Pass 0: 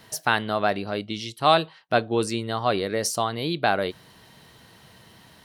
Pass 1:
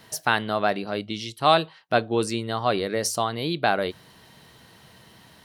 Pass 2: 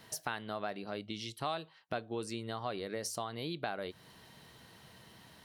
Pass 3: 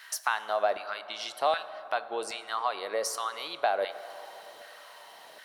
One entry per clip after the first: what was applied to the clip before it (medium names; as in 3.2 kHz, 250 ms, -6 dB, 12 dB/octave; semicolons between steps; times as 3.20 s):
hum notches 50/100 Hz
compression 3:1, threshold -32 dBFS, peak gain reduction 14.5 dB; trim -5.5 dB
LFO high-pass saw down 1.3 Hz 510–1600 Hz; plate-style reverb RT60 3.8 s, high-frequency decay 0.35×, DRR 12.5 dB; trim +6 dB